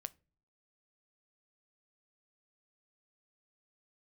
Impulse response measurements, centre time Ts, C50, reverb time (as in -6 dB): 2 ms, 25.0 dB, no single decay rate